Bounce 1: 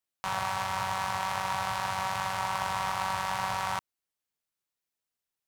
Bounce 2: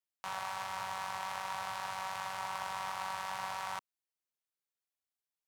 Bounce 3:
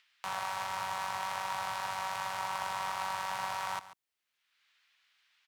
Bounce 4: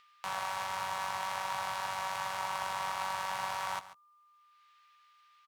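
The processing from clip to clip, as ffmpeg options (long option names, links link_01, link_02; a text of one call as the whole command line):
ffmpeg -i in.wav -filter_complex "[0:a]lowshelf=frequency=160:gain=-11.5,acrossover=split=410[link_01][link_02];[link_01]alimiter=level_in=17.5dB:limit=-24dB:level=0:latency=1:release=364,volume=-17.5dB[link_03];[link_03][link_02]amix=inputs=2:normalize=0,volume=-7.5dB" out.wav
ffmpeg -i in.wav -filter_complex "[0:a]acrossover=split=310|1400|3800[link_01][link_02][link_03][link_04];[link_03]acompressor=mode=upward:threshold=-51dB:ratio=2.5[link_05];[link_01][link_02][link_05][link_04]amix=inputs=4:normalize=0,aecho=1:1:140:0.168,volume=3dB" out.wav
ffmpeg -i in.wav -filter_complex "[0:a]aeval=exprs='val(0)+0.000708*sin(2*PI*1200*n/s)':channel_layout=same,asplit=2[link_01][link_02];[link_02]adelay=14,volume=-12dB[link_03];[link_01][link_03]amix=inputs=2:normalize=0" out.wav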